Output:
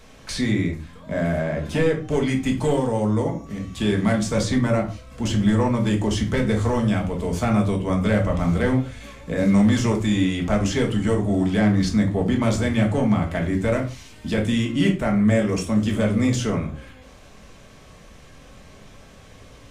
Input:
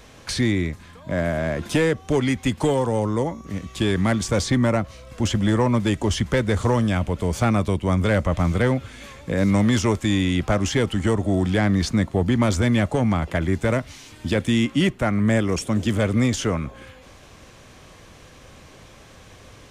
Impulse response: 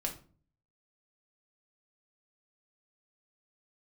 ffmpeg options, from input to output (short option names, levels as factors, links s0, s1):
-filter_complex "[0:a]asettb=1/sr,asplit=3[s0][s1][s2];[s0]atrim=end=1.424[s3];[s1]atrim=start=1.42:end=2.1,asetpts=PTS-STARTPTS,afade=t=in:d=0.004:c=qsin,afade=t=out:st=0.676:d=0.004:c=qsin,highshelf=f=4700:g=-6.5[s4];[s2]atrim=start=2.096[s5];[s3][s4]acrossfade=d=0.004:c1=hsin:c2=qsin[s6];[s6][s5]acrossfade=d=0.004:c1=qsin:c2=hsin[s7];[1:a]atrim=start_sample=2205,afade=t=out:st=0.21:d=0.01,atrim=end_sample=9702,asetrate=41895,aresample=44100[s8];[s7][s8]afir=irnorm=-1:irlink=0,volume=0.668"